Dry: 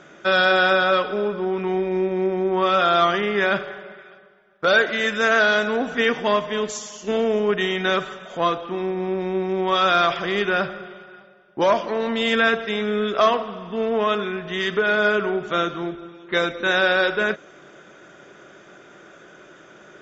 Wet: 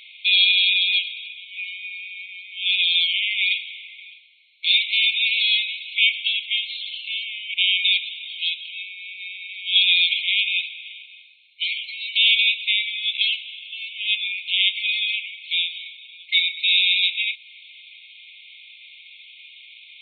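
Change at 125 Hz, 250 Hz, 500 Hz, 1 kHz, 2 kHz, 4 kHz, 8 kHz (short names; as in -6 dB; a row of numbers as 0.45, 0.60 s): under -40 dB, under -40 dB, under -40 dB, under -40 dB, -1.0 dB, +10.5 dB, n/a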